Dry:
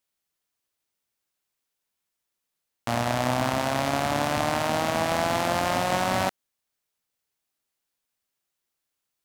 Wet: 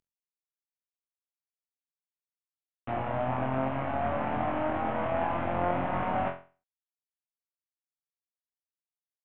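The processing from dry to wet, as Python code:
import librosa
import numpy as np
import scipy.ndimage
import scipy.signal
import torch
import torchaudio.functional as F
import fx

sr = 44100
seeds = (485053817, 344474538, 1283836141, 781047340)

y = fx.cvsd(x, sr, bps=16000)
y = fx.env_lowpass_down(y, sr, base_hz=2300.0, full_db=-28.5)
y = fx.room_flutter(y, sr, wall_m=3.9, rt60_s=0.35)
y = F.gain(torch.from_numpy(y), -3.0).numpy()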